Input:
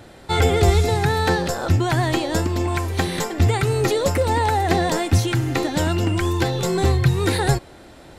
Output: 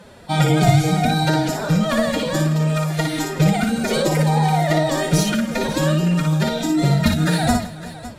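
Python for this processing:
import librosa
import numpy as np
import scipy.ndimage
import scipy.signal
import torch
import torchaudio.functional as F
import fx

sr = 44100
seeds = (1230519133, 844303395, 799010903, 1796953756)

y = fx.pitch_keep_formants(x, sr, semitones=10.0)
y = fx.echo_multitap(y, sr, ms=(58, 163, 371, 558), db=(-5.0, -18.0, -19.0, -15.0))
y = fx.cheby_harmonics(y, sr, harmonics=(4,), levels_db=(-29,), full_scale_db=-1.5)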